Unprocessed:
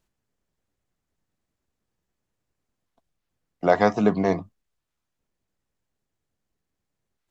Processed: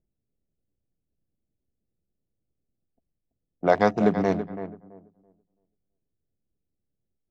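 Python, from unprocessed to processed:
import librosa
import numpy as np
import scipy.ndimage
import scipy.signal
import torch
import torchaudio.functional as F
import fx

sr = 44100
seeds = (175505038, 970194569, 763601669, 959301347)

y = fx.wiener(x, sr, points=41)
y = fx.echo_filtered(y, sr, ms=332, feedback_pct=21, hz=4300.0, wet_db=-11.0)
y = fx.env_lowpass(y, sr, base_hz=770.0, full_db=-17.5)
y = F.gain(torch.from_numpy(y), -1.0).numpy()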